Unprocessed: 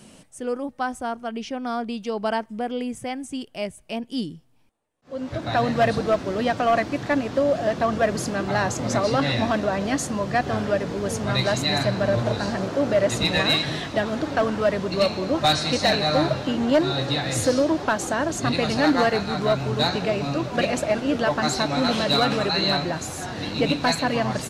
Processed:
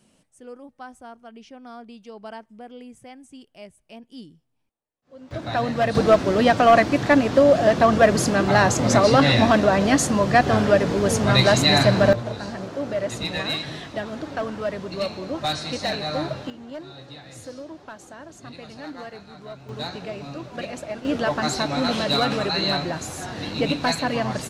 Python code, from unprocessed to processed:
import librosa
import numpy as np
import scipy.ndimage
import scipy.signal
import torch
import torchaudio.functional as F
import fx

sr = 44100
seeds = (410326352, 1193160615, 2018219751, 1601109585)

y = fx.gain(x, sr, db=fx.steps((0.0, -13.0), (5.31, -2.0), (5.95, 6.0), (12.13, -6.0), (16.5, -17.5), (19.69, -9.5), (21.05, -1.0)))